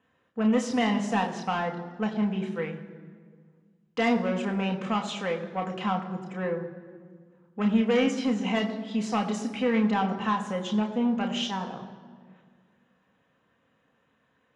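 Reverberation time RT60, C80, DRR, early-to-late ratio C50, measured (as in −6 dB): 1.8 s, 11.5 dB, 2.5 dB, 10.5 dB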